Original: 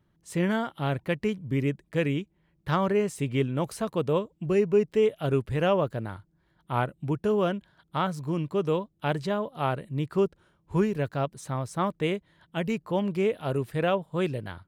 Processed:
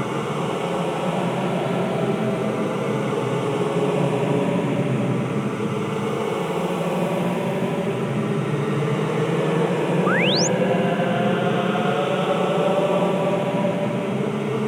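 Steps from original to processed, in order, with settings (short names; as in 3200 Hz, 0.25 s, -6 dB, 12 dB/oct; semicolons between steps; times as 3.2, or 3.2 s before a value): swelling echo 0.123 s, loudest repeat 8, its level -5.5 dB; Paulstretch 24×, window 0.10 s, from 13.4; painted sound rise, 10.06–10.48, 1100–7300 Hz -23 dBFS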